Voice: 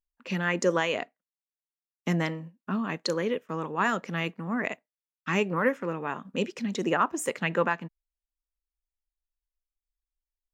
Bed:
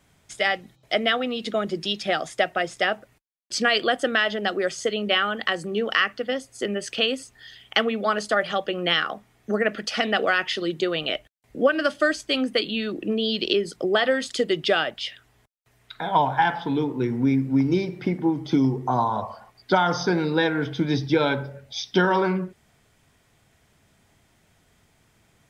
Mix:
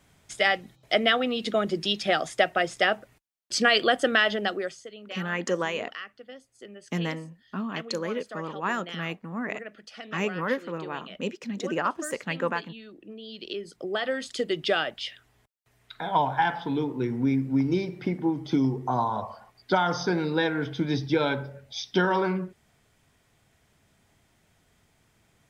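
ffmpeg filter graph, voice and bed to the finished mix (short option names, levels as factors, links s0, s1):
-filter_complex "[0:a]adelay=4850,volume=0.75[s0];[1:a]volume=5.31,afade=t=out:st=4.32:d=0.51:silence=0.125893,afade=t=in:st=13.25:d=1.49:silence=0.188365[s1];[s0][s1]amix=inputs=2:normalize=0"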